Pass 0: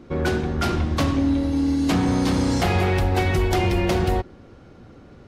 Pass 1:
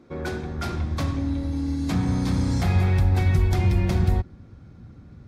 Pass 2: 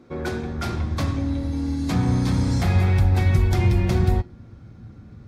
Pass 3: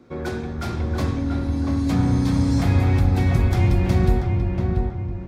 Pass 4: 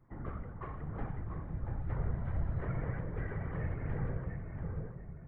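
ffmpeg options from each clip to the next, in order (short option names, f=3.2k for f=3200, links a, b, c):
-af "highpass=f=110:p=1,bandreject=f=2.9k:w=7.8,asubboost=boost=8.5:cutoff=160,volume=-6.5dB"
-af "flanger=delay=8:depth=1.4:regen=74:speed=0.5:shape=triangular,volume=6.5dB"
-filter_complex "[0:a]acrossover=split=590|990[a][b][c];[c]asoftclip=type=tanh:threshold=-29.5dB[d];[a][b][d]amix=inputs=3:normalize=0,asplit=2[e][f];[f]adelay=686,lowpass=f=1.6k:p=1,volume=-3dB,asplit=2[g][h];[h]adelay=686,lowpass=f=1.6k:p=1,volume=0.46,asplit=2[i][j];[j]adelay=686,lowpass=f=1.6k:p=1,volume=0.46,asplit=2[k][l];[l]adelay=686,lowpass=f=1.6k:p=1,volume=0.46,asplit=2[m][n];[n]adelay=686,lowpass=f=1.6k:p=1,volume=0.46,asplit=2[o][p];[p]adelay=686,lowpass=f=1.6k:p=1,volume=0.46[q];[e][g][i][k][m][o][q]amix=inputs=7:normalize=0"
-af "bandreject=f=46.03:t=h:w=4,bandreject=f=92.06:t=h:w=4,bandreject=f=138.09:t=h:w=4,afftfilt=real='hypot(re,im)*cos(2*PI*random(0))':imag='hypot(re,im)*sin(2*PI*random(1))':win_size=512:overlap=0.75,highpass=f=150:t=q:w=0.5412,highpass=f=150:t=q:w=1.307,lowpass=f=2.3k:t=q:w=0.5176,lowpass=f=2.3k:t=q:w=0.7071,lowpass=f=2.3k:t=q:w=1.932,afreqshift=-290,volume=-6dB"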